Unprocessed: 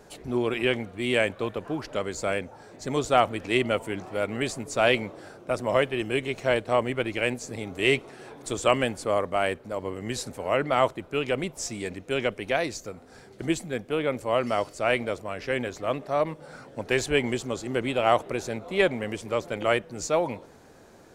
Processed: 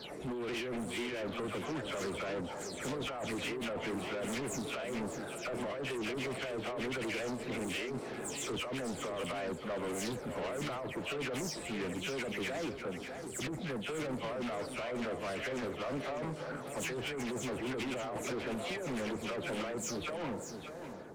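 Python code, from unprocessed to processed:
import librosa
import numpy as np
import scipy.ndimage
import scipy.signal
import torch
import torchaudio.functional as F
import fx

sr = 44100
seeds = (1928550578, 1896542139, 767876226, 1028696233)

p1 = fx.spec_delay(x, sr, highs='early', ms=216)
p2 = scipy.signal.sosfilt(scipy.signal.butter(2, 76.0, 'highpass', fs=sr, output='sos'), p1)
p3 = fx.peak_eq(p2, sr, hz=4400.0, db=-4.0, octaves=2.1)
p4 = fx.over_compress(p3, sr, threshold_db=-31.0, ratio=-1.0)
p5 = 10.0 ** (-35.0 / 20.0) * np.tanh(p4 / 10.0 ** (-35.0 / 20.0))
p6 = p5 + fx.echo_single(p5, sr, ms=598, db=-8.5, dry=0)
y = fx.doppler_dist(p6, sr, depth_ms=0.16)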